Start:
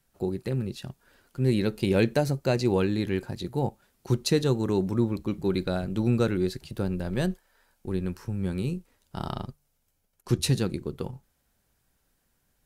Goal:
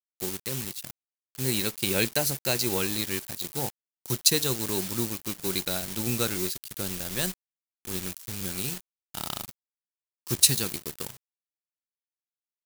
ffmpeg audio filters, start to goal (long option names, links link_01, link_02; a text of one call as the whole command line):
ffmpeg -i in.wav -af "acrusher=bits=6:mix=0:aa=0.000001,aeval=exprs='sgn(val(0))*max(abs(val(0))-0.0106,0)':channel_layout=same,crystalizer=i=10:c=0,volume=-6.5dB" out.wav